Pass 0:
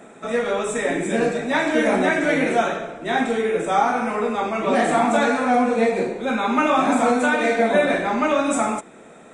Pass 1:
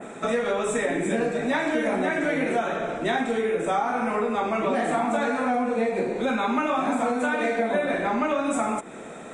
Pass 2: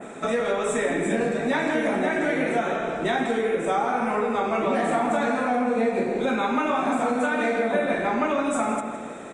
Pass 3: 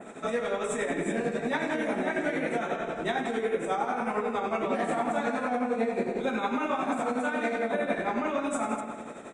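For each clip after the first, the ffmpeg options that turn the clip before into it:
-af "adynamicequalizer=threshold=0.00891:dfrequency=5400:dqfactor=0.82:tfrequency=5400:tqfactor=0.82:attack=5:release=100:ratio=0.375:range=2.5:mode=cutabove:tftype=bell,acompressor=threshold=0.0398:ratio=5,volume=1.88"
-filter_complex "[0:a]asplit=2[s0][s1];[s1]adelay=162,lowpass=f=3700:p=1,volume=0.447,asplit=2[s2][s3];[s3]adelay=162,lowpass=f=3700:p=1,volume=0.51,asplit=2[s4][s5];[s5]adelay=162,lowpass=f=3700:p=1,volume=0.51,asplit=2[s6][s7];[s7]adelay=162,lowpass=f=3700:p=1,volume=0.51,asplit=2[s8][s9];[s9]adelay=162,lowpass=f=3700:p=1,volume=0.51,asplit=2[s10][s11];[s11]adelay=162,lowpass=f=3700:p=1,volume=0.51[s12];[s0][s2][s4][s6][s8][s10][s12]amix=inputs=7:normalize=0"
-af "tremolo=f=11:d=0.53,volume=0.708"

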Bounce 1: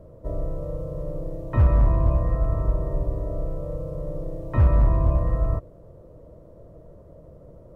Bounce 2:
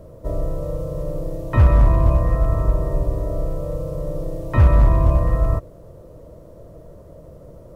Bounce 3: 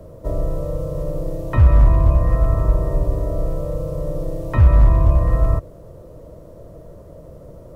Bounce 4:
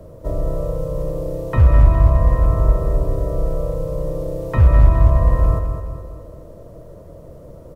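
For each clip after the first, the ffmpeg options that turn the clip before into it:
-af "highshelf=f=2200:g=10.5,volume=1.68"
-filter_complex "[0:a]acrossover=split=120[s0][s1];[s1]acompressor=threshold=0.0631:ratio=5[s2];[s0][s2]amix=inputs=2:normalize=0,volume=1.26"
-af "aecho=1:1:209|418|627|836|1045|1254:0.422|0.202|0.0972|0.0466|0.0224|0.0107"

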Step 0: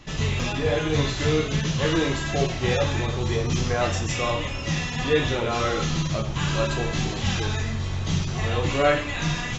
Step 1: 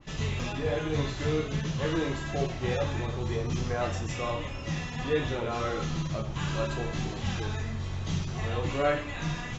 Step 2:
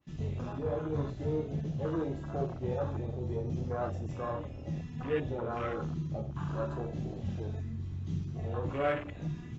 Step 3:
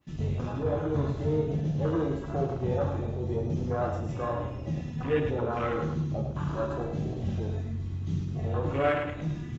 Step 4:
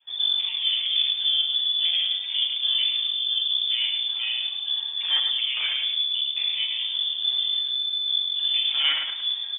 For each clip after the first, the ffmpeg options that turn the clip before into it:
-af "adynamicequalizer=threshold=0.01:dfrequency=2000:dqfactor=0.7:tfrequency=2000:tqfactor=0.7:attack=5:release=100:ratio=0.375:range=2.5:mode=cutabove:tftype=highshelf,volume=0.501"
-filter_complex "[0:a]highpass=55,afwtdn=0.0224,asplit=2[s0][s1];[s1]asoftclip=type=tanh:threshold=0.0376,volume=0.282[s2];[s0][s2]amix=inputs=2:normalize=0,volume=0.562"
-af "aecho=1:1:106|212|318|424:0.447|0.138|0.0429|0.0133,volume=1.68"
-af "lowshelf=f=89:g=9,lowpass=f=3100:t=q:w=0.5098,lowpass=f=3100:t=q:w=0.6013,lowpass=f=3100:t=q:w=0.9,lowpass=f=3100:t=q:w=2.563,afreqshift=-3600,volume=1.26"

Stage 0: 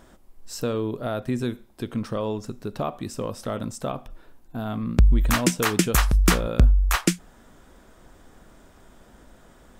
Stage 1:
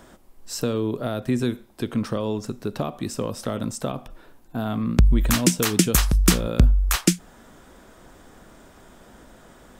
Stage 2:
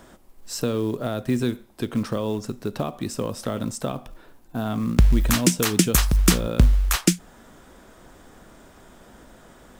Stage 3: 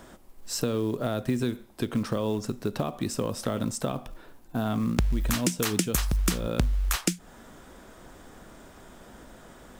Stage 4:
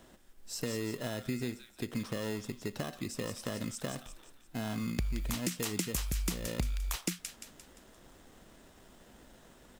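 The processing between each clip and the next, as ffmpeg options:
-filter_complex "[0:a]acrossover=split=360|3000[s0][s1][s2];[s1]acompressor=threshold=0.0251:ratio=6[s3];[s0][s3][s2]amix=inputs=3:normalize=0,lowshelf=f=76:g=-7,volume=1.68"
-af "acrusher=bits=7:mode=log:mix=0:aa=0.000001"
-af "acompressor=threshold=0.0708:ratio=4"
-filter_complex "[0:a]acrossover=split=1500[s0][s1];[s0]acrusher=samples=19:mix=1:aa=0.000001[s2];[s1]aecho=1:1:174|348|522|696|870|1044:0.562|0.253|0.114|0.0512|0.0231|0.0104[s3];[s2][s3]amix=inputs=2:normalize=0,volume=0.376"

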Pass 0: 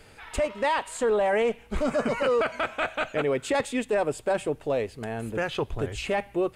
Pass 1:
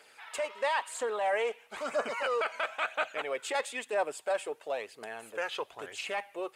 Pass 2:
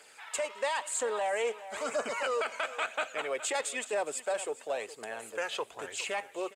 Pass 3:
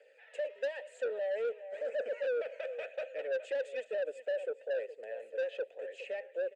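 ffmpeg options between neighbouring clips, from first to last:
-af "highpass=650,aphaser=in_gain=1:out_gain=1:delay=2.5:decay=0.38:speed=1:type=triangular,volume=0.668"
-filter_complex "[0:a]equalizer=f=7500:t=o:w=0.56:g=8.5,aecho=1:1:413|826|1239:0.15|0.0464|0.0144,acrossover=split=420|3000[s0][s1][s2];[s1]acompressor=threshold=0.0282:ratio=6[s3];[s0][s3][s2]amix=inputs=3:normalize=0,volume=1.12"
-filter_complex "[0:a]asplit=3[s0][s1][s2];[s0]bandpass=f=530:t=q:w=8,volume=1[s3];[s1]bandpass=f=1840:t=q:w=8,volume=0.501[s4];[s2]bandpass=f=2480:t=q:w=8,volume=0.355[s5];[s3][s4][s5]amix=inputs=3:normalize=0,equalizer=f=530:w=1.3:g=10,acrossover=split=210[s6][s7];[s7]asoftclip=type=tanh:threshold=0.0316[s8];[s6][s8]amix=inputs=2:normalize=0"

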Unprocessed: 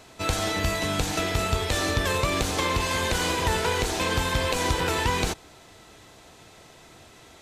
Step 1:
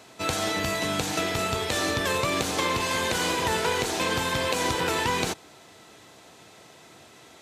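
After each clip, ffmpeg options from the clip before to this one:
-af "highpass=130"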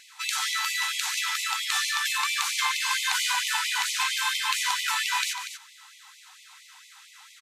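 -af "aecho=1:1:145.8|239.1:0.251|0.316,afftfilt=real='re*gte(b*sr/1024,760*pow(2000/760,0.5+0.5*sin(2*PI*4.4*pts/sr)))':imag='im*gte(b*sr/1024,760*pow(2000/760,0.5+0.5*sin(2*PI*4.4*pts/sr)))':win_size=1024:overlap=0.75,volume=1.33"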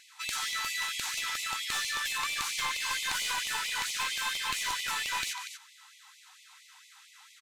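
-af "aeval=exprs='clip(val(0),-1,0.0596)':c=same,volume=0.562"

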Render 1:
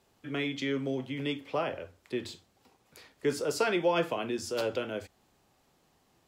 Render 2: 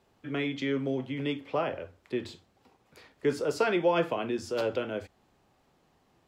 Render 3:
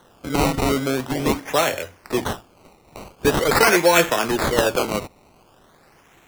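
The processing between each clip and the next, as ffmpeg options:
-af "highshelf=f=4500:g=-10.5,volume=1.26"
-af "crystalizer=i=9:c=0,acrusher=samples=18:mix=1:aa=0.000001:lfo=1:lforange=18:lforate=0.44,volume=2.24"

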